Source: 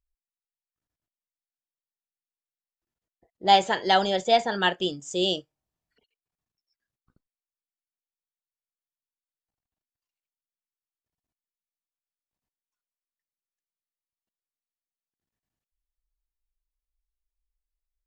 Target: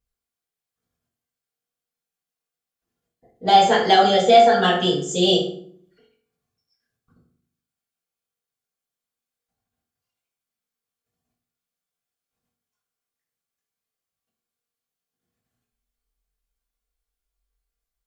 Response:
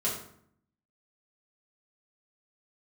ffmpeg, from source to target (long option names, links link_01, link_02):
-filter_complex "[0:a]alimiter=limit=-12dB:level=0:latency=1:release=108,acontrast=61[link_01];[1:a]atrim=start_sample=2205,asetrate=48510,aresample=44100[link_02];[link_01][link_02]afir=irnorm=-1:irlink=0,volume=-4dB"